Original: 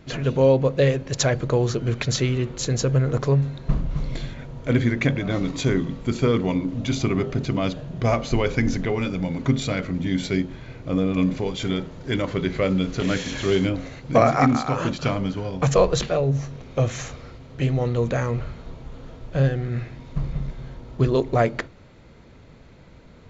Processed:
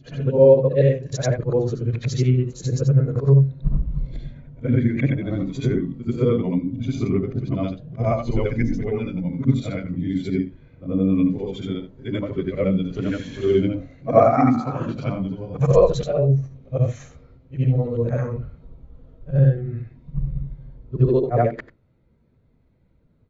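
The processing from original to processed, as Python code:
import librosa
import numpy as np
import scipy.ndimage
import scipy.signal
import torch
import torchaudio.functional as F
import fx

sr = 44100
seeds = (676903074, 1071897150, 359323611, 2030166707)

y = fx.frame_reverse(x, sr, frame_ms=189.0)
y = fx.spectral_expand(y, sr, expansion=1.5)
y = F.gain(torch.from_numpy(y), 6.0).numpy()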